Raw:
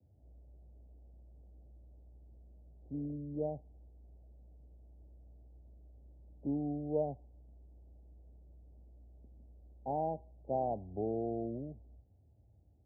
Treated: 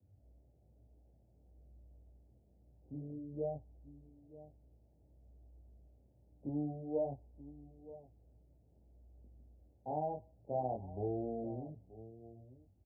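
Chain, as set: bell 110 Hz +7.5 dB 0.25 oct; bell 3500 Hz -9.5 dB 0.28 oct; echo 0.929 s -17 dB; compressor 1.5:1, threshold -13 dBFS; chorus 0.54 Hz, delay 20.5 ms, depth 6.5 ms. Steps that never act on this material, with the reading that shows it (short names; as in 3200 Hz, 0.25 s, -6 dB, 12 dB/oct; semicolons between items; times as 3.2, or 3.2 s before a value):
bell 3500 Hz: input band ends at 910 Hz; compressor, threshold -13 dBFS: input peak -22.0 dBFS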